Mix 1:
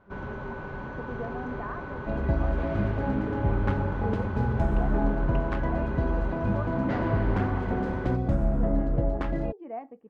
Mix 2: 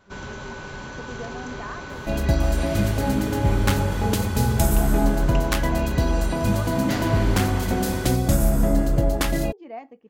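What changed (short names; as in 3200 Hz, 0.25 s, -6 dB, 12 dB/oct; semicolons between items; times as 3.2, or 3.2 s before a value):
second sound +5.5 dB; master: remove LPF 1400 Hz 12 dB/oct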